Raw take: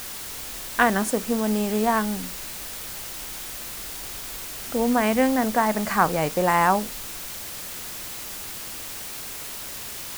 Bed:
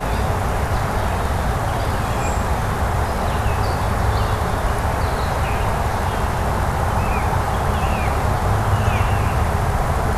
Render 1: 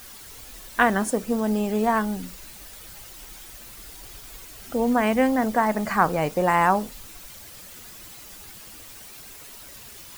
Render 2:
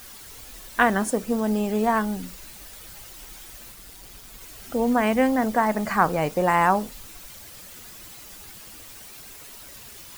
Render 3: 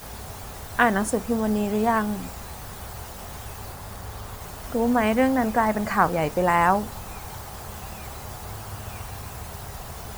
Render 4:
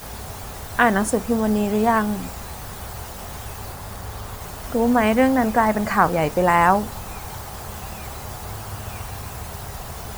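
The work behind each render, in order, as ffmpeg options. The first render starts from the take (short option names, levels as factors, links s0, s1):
-af "afftdn=nr=10:nf=-36"
-filter_complex "[0:a]asettb=1/sr,asplit=3[s0][s1][s2];[s0]atrim=end=3.724[s3];[s1]atrim=start=3.72:end=4.41,asetpts=PTS-STARTPTS,afade=t=in:d=0.004:c=qsin,afade=t=out:st=0.686:d=0.004:c=qsin,tremolo=f=190:d=0.519[s4];[s2]atrim=start=4.406[s5];[s3][s4]acrossfade=d=0.004:c1=hsin:c2=qsin[s6];[s6][s5]acrossfade=d=0.004:c1=qsin:c2=hsin"
-filter_complex "[1:a]volume=0.112[s0];[0:a][s0]amix=inputs=2:normalize=0"
-af "volume=1.5,alimiter=limit=0.708:level=0:latency=1"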